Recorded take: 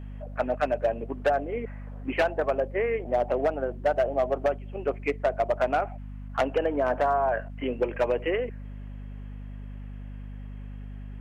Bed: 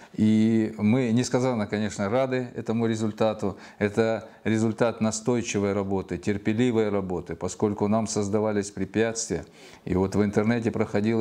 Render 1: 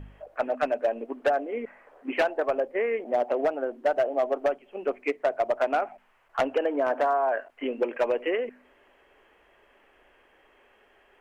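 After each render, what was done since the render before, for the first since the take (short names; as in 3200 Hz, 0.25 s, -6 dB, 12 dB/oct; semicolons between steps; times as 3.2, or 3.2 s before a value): de-hum 50 Hz, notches 5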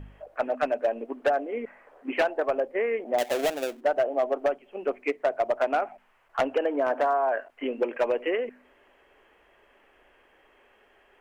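3.18–3.81 switching dead time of 0.25 ms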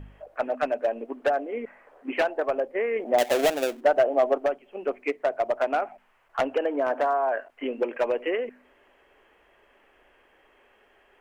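2.96–4.38 gain +4 dB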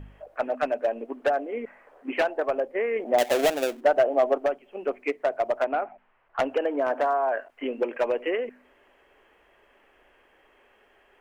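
5.64–6.39 air absorption 330 m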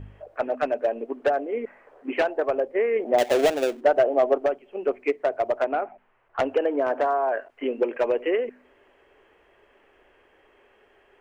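fifteen-band EQ 100 Hz +7 dB, 400 Hz +5 dB, 16000 Hz -11 dB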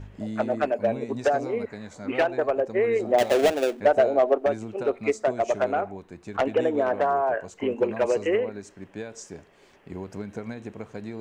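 add bed -12.5 dB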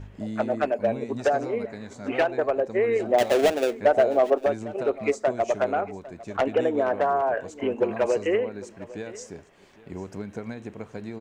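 echo 0.803 s -19 dB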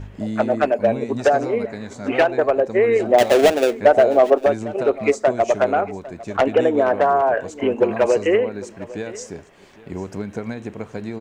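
gain +6.5 dB; limiter -3 dBFS, peak gain reduction 1.5 dB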